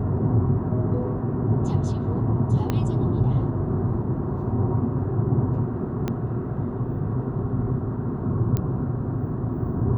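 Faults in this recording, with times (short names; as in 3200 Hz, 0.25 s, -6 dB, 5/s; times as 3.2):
2.7 pop -11 dBFS
6.08 pop -14 dBFS
8.57 pop -13 dBFS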